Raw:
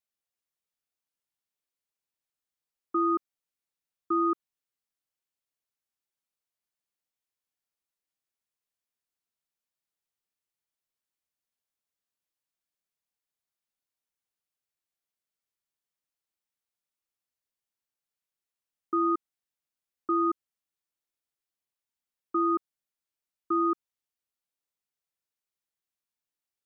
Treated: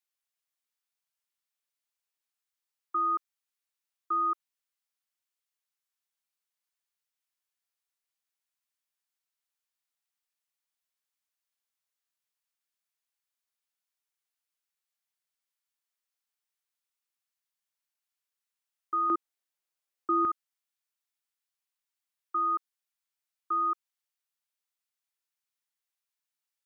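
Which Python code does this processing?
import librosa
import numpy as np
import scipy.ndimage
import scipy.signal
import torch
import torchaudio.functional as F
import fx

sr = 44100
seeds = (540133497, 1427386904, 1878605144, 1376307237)

y = fx.highpass(x, sr, hz=fx.steps((0.0, 890.0), (19.1, 390.0), (20.25, 920.0)), slope=12)
y = F.gain(torch.from_numpy(y), 1.5).numpy()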